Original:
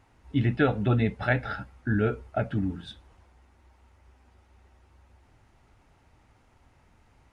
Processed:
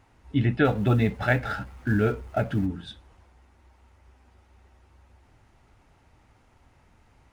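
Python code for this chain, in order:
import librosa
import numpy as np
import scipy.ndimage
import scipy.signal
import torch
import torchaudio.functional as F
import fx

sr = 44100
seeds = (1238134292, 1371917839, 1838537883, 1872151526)

y = fx.law_mismatch(x, sr, coded='mu', at=(0.64, 2.65), fade=0.02)
y = F.gain(torch.from_numpy(y), 1.5).numpy()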